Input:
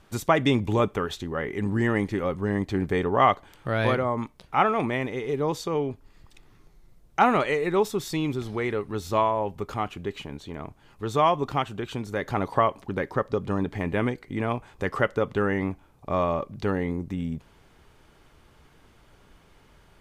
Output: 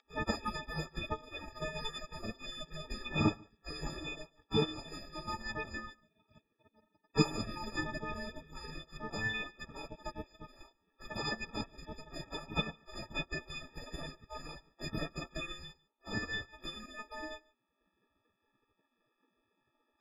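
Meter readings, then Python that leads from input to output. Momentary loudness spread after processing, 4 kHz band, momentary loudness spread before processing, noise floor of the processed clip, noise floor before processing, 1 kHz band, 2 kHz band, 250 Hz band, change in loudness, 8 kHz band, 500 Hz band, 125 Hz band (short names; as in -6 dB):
14 LU, -3.0 dB, 10 LU, -82 dBFS, -58 dBFS, -18.0 dB, -8.5 dB, -13.0 dB, -13.0 dB, -6.5 dB, -17.5 dB, -12.0 dB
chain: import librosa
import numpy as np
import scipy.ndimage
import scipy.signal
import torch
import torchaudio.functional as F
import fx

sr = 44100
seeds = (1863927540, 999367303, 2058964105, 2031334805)

y = fx.freq_snap(x, sr, grid_st=6)
y = fx.spec_gate(y, sr, threshold_db=-25, keep='weak')
y = fx.air_absorb(y, sr, metres=200.0)
y = y + 10.0 ** (-21.5 / 20.0) * np.pad(y, (int(145 * sr / 1000.0), 0))[:len(y)]
y = fx.transient(y, sr, attack_db=4, sustain_db=-4)
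y = y * librosa.db_to_amplitude(13.0)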